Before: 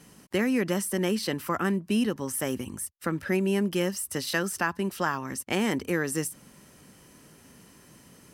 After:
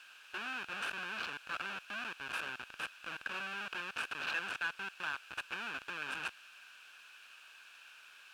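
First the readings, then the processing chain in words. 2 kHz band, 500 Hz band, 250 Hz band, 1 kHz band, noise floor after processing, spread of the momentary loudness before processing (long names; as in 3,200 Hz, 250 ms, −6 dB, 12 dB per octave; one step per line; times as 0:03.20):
−3.5 dB, −24.0 dB, −29.0 dB, −9.0 dB, −58 dBFS, 6 LU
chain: comparator with hysteresis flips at −29 dBFS
bit-depth reduction 8 bits, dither triangular
pair of resonant band-passes 2,000 Hz, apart 0.71 octaves
level +5.5 dB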